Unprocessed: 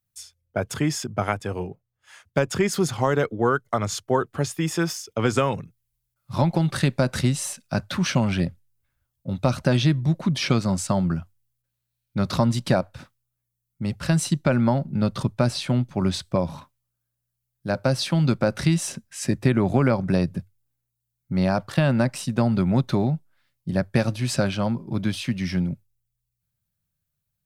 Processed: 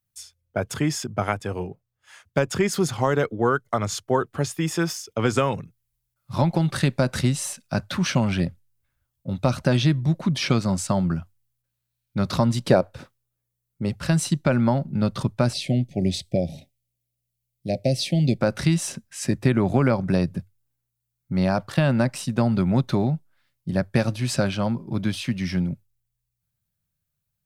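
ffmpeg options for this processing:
-filter_complex "[0:a]asettb=1/sr,asplit=3[a][b][c];[a]atrim=end=12.644[d];[b]atrim=start=12.64:end=13.89,asetpts=PTS-STARTPTS,afade=t=in:d=0.004:c=qsin,afade=t=out:st=1.246:d=0.004:c=qsin,equalizer=f=440:t=o:w=0.77:g=9.5[e];[c]atrim=start=13.886[f];[d][e]acrossfade=d=0.004:c1=hsin:c2=qsin[g];[g][f]acrossfade=d=0.004:c1=qsin:c2=hsin,asettb=1/sr,asplit=3[h][i][j];[h]atrim=end=15.534[k];[i]atrim=start=15.53:end=18.4,asetpts=PTS-STARTPTS,afade=t=in:d=0.004:c=qsin,afade=t=out:st=2.866:d=0.004:c=qsin,asuperstop=centerf=1200:order=12:qfactor=1[l];[j]atrim=start=18.396[m];[k][l]acrossfade=d=0.004:c1=hsin:c2=qsin[n];[n][m]acrossfade=d=0.004:c1=qsin:c2=hsin"

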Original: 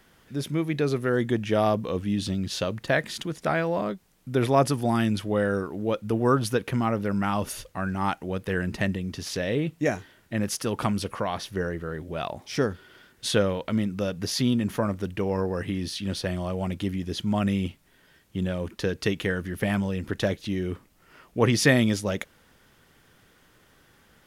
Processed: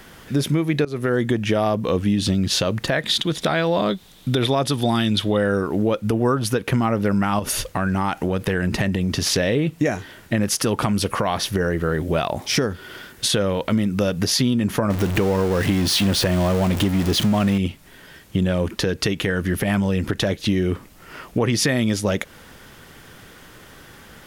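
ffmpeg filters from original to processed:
-filter_complex "[0:a]asettb=1/sr,asplit=3[a][b][c];[a]atrim=end=3.024[d];[b]atrim=start=3.02:end=5.37,asetpts=PTS-STARTPTS,afade=t=in:d=0.004:c=qsin,afade=t=out:st=2.346:d=0.004:c=qsin,equalizer=f=3.6k:t=o:w=0.44:g=14[e];[c]atrim=start=5.366[f];[d][e]acrossfade=d=0.004:c1=hsin:c2=qsin[g];[g][f]acrossfade=d=0.004:c1=qsin:c2=hsin,asettb=1/sr,asplit=3[h][i][j];[h]atrim=end=7.394[k];[i]atrim=start=7.39:end=9.28,asetpts=PTS-STARTPTS,afade=t=in:d=0.004:c=qsin,afade=t=out:st=1.886:d=0.004:c=qsin,acompressor=threshold=-30dB:ratio=6:attack=3.2:release=140:knee=1:detection=peak[l];[j]atrim=start=9.276[m];[k][l]acrossfade=d=0.004:c1=hsin:c2=qsin[n];[n][m]acrossfade=d=0.004:c1=qsin:c2=hsin,asettb=1/sr,asplit=3[o][p][q];[o]atrim=end=10.964[r];[p]atrim=start=10.96:end=14.25,asetpts=PTS-STARTPTS,afade=t=in:d=0.004:c=qsin,afade=t=out:st=3.286:d=0.004:c=qsin,highshelf=f=10k:g=5[s];[q]atrim=start=14.246[t];[r][s]acrossfade=d=0.004:c1=hsin:c2=qsin[u];[u][t]acrossfade=d=0.004:c1=qsin:c2=hsin,asettb=1/sr,asplit=3[v][w][x];[v]atrim=end=14.904[y];[w]atrim=start=14.9:end=17.58,asetpts=PTS-STARTPTS,afade=t=in:d=0.004:c=qsin,afade=t=out:st=2.676:d=0.004:c=qsin,aeval=exprs='val(0)+0.5*0.0299*sgn(val(0))':c=same[z];[x]atrim=start=17.576[aa];[y][z]acrossfade=d=0.004:c1=hsin:c2=qsin[ab];[ab][aa]acrossfade=d=0.004:c1=qsin:c2=hsin,asplit=2[ac][ad];[ac]atrim=end=0.85,asetpts=PTS-STARTPTS,afade=t=out:st=0.846:d=0.004:c=hsin:silence=0.112202[ae];[ad]atrim=start=0.85,asetpts=PTS-STARTPTS,afade=t=in:d=0.63:c=qsin:silence=0.112202[af];[ae][af]concat=n=2:v=0:a=1,acompressor=threshold=-31dB:ratio=6,alimiter=level_in=23dB:limit=-1dB:release=50:level=0:latency=1,volume=-8.5dB"

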